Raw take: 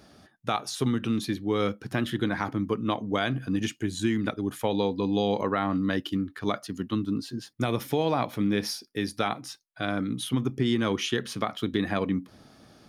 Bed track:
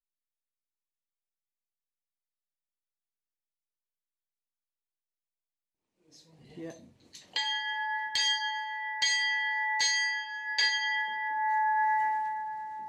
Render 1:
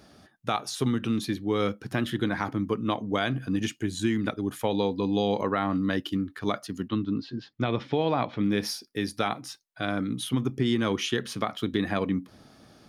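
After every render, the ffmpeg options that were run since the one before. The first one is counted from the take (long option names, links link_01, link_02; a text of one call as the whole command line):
ffmpeg -i in.wav -filter_complex "[0:a]asettb=1/sr,asplit=3[link_01][link_02][link_03];[link_01]atrim=end=6.884[link_04];[link_02]atrim=start=6.88:end=8.44,asetpts=PTS-STARTPTS,afade=type=in:duration=0.004:curve=qsin,afade=type=out:start_time=1.556:duration=0.004:curve=qsin,lowpass=frequency=4300:width=0.5412,lowpass=frequency=4300:width=1.3066[link_05];[link_03]atrim=start=8.436[link_06];[link_04][link_05]acrossfade=duration=0.004:curve1=hsin:curve2=qsin[link_07];[link_07][link_06]acrossfade=duration=0.004:curve1=qsin:curve2=hsin" out.wav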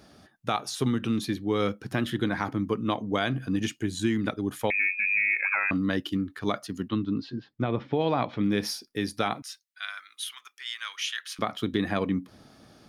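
ffmpeg -i in.wav -filter_complex "[0:a]asettb=1/sr,asplit=3[link_01][link_02][link_03];[link_01]atrim=end=4.704[link_04];[link_02]atrim=start=4.7:end=5.71,asetpts=PTS-STARTPTS,afade=type=in:duration=0.004:curve=qsin,afade=type=out:start_time=1.006:duration=0.004:curve=qsin,lowpass=frequency=2300:width_type=q:width=0.5098,lowpass=frequency=2300:width_type=q:width=0.6013,lowpass=frequency=2300:width_type=q:width=0.9,lowpass=frequency=2300:width_type=q:width=2.563,afreqshift=-2700[link_05];[link_03]atrim=start=5.706[link_06];[link_04][link_05]acrossfade=duration=0.004:curve1=hsin:curve2=qsin[link_07];[link_07][link_06]acrossfade=duration=0.004:curve1=qsin:curve2=hsin,asplit=3[link_08][link_09][link_10];[link_08]afade=type=out:start_time=7.38:duration=0.02[link_11];[link_09]lowpass=frequency=1500:poles=1,afade=type=in:start_time=7.38:duration=0.02,afade=type=out:start_time=7.99:duration=0.02[link_12];[link_10]afade=type=in:start_time=7.99:duration=0.02[link_13];[link_11][link_12][link_13]amix=inputs=3:normalize=0,asettb=1/sr,asplit=3[link_14][link_15][link_16];[link_14]atrim=end=9.424[link_17];[link_15]atrim=start=9.42:end=11.39,asetpts=PTS-STARTPTS,afade=type=in:duration=0.004:curve=qsin,afade=type=out:start_time=1.966:duration=0.004:curve=qsin,highpass=frequency=1400:width=0.5412,highpass=frequency=1400:width=1.3066[link_18];[link_16]atrim=start=11.386[link_19];[link_17][link_18]acrossfade=duration=0.004:curve1=hsin:curve2=qsin[link_20];[link_20][link_19]acrossfade=duration=0.004:curve1=qsin:curve2=hsin" out.wav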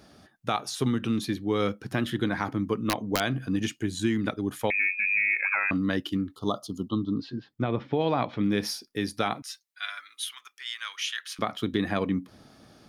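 ffmpeg -i in.wav -filter_complex "[0:a]asettb=1/sr,asplit=3[link_01][link_02][link_03];[link_01]atrim=end=2.744[link_04];[link_02]atrim=start=2.74:end=3.2,asetpts=PTS-STARTPTS,afade=type=in:duration=0.004:curve=qsin,afade=type=out:start_time=0.456:duration=0.004:curve=qsin,aeval=exprs='(mod(5.62*val(0)+1,2)-1)/5.62':channel_layout=same[link_05];[link_03]atrim=start=3.196[link_06];[link_04][link_05]acrossfade=duration=0.004:curve1=hsin:curve2=qsin[link_07];[link_07][link_06]acrossfade=duration=0.004:curve1=qsin:curve2=hsin,asettb=1/sr,asplit=3[link_08][link_09][link_10];[link_08]atrim=end=6.354[link_11];[link_09]atrim=start=6.35:end=7.2,asetpts=PTS-STARTPTS,afade=type=in:duration=0.004:curve=qsin,afade=type=out:start_time=0.846:duration=0.004:curve=qsin,asuperstop=centerf=2000:order=20:qfactor=1.2[link_12];[link_10]atrim=start=7.196[link_13];[link_11][link_12]acrossfade=duration=0.004:curve1=hsin:curve2=qsin[link_14];[link_14][link_13]acrossfade=duration=0.004:curve1=qsin:curve2=hsin,asettb=1/sr,asplit=3[link_15][link_16][link_17];[link_15]atrim=end=9.474[link_18];[link_16]atrim=start=9.47:end=10.26,asetpts=PTS-STARTPTS,afade=type=in:duration=0.004:curve=qsin,afade=type=out:start_time=0.786:duration=0.004:curve=qsin,aecho=1:1:6.9:0.65,atrim=end_sample=34839[link_19];[link_17]atrim=start=10.256[link_20];[link_18][link_19]acrossfade=duration=0.004:curve1=hsin:curve2=qsin[link_21];[link_21][link_20]acrossfade=duration=0.004:curve1=qsin:curve2=hsin" out.wav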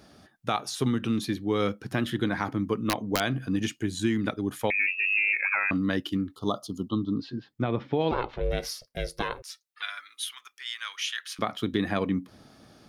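ffmpeg -i in.wav -filter_complex "[0:a]asplit=3[link_01][link_02][link_03];[link_01]afade=type=out:start_time=4.86:duration=0.02[link_04];[link_02]afreqshift=170,afade=type=in:start_time=4.86:duration=0.02,afade=type=out:start_time=5.32:duration=0.02[link_05];[link_03]afade=type=in:start_time=5.32:duration=0.02[link_06];[link_04][link_05][link_06]amix=inputs=3:normalize=0,asettb=1/sr,asplit=3[link_07][link_08][link_09];[link_07]atrim=end=8.114[link_10];[link_08]atrim=start=8.11:end=9.82,asetpts=PTS-STARTPTS,afade=type=in:duration=0.004:curve=qsin,afade=type=out:start_time=1.706:duration=0.004:curve=qsin,aeval=exprs='val(0)*sin(2*PI*250*n/s)':channel_layout=same[link_11];[link_09]atrim=start=9.816[link_12];[link_10][link_11]acrossfade=duration=0.004:curve1=hsin:curve2=qsin[link_13];[link_13][link_12]acrossfade=duration=0.004:curve1=qsin:curve2=hsin" out.wav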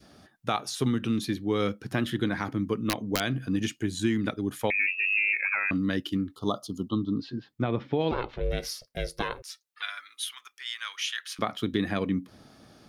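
ffmpeg -i in.wav -af "adynamicequalizer=threshold=0.00794:dfrequency=870:dqfactor=1.1:tfrequency=870:tqfactor=1.1:attack=5:release=100:ratio=0.375:range=3.5:mode=cutabove:tftype=bell" out.wav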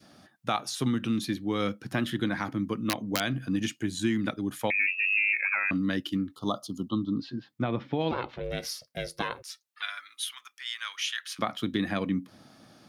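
ffmpeg -i in.wav -af "highpass=110,equalizer=frequency=420:width=4.6:gain=-7" out.wav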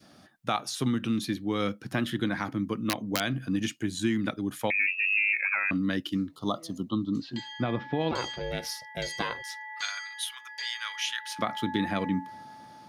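ffmpeg -i in.wav -i bed.wav -filter_complex "[1:a]volume=-11dB[link_01];[0:a][link_01]amix=inputs=2:normalize=0" out.wav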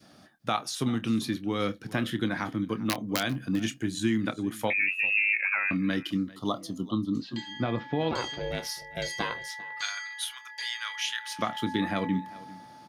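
ffmpeg -i in.wav -filter_complex "[0:a]asplit=2[link_01][link_02];[link_02]adelay=27,volume=-13dB[link_03];[link_01][link_03]amix=inputs=2:normalize=0,aecho=1:1:396:0.1" out.wav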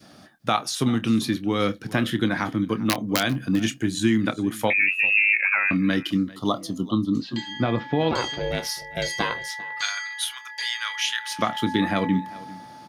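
ffmpeg -i in.wav -af "volume=6dB" out.wav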